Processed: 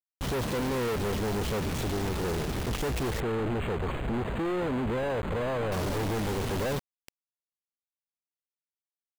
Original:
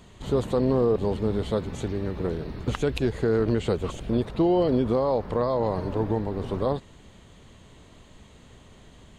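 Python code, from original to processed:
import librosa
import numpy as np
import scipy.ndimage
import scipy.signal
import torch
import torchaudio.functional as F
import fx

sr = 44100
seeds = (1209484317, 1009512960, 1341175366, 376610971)

y = fx.tracing_dist(x, sr, depth_ms=0.47)
y = fx.lowpass(y, sr, hz=3900.0, slope=6)
y = fx.quant_companded(y, sr, bits=2)
y = fx.resample_linear(y, sr, factor=8, at=(3.2, 5.72))
y = y * 10.0 ** (-3.5 / 20.0)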